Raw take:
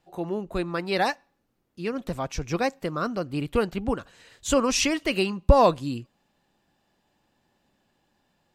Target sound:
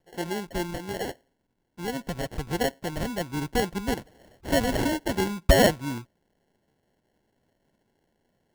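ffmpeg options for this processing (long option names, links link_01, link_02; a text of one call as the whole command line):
ffmpeg -i in.wav -filter_complex "[0:a]asettb=1/sr,asplit=3[link_01][link_02][link_03];[link_01]atrim=end=0.724[link_04];[link_02]atrim=start=0.72:end=1.88,asetpts=PTS-STARTPTS,afade=type=in:duration=0.004:curve=qsin,afade=type=out:start_time=1.156:duration=0.004:curve=qsin,acompressor=threshold=-28dB:ratio=4[link_05];[link_03]atrim=start=1.876[link_06];[link_04][link_05]acrossfade=duration=0.004:curve1=hsin:curve2=qsin[link_07];[link_07][link_06]acrossfade=duration=0.004:curve1=qsin:curve2=hsin,acrusher=samples=36:mix=1:aa=0.000001,volume=-1.5dB" out.wav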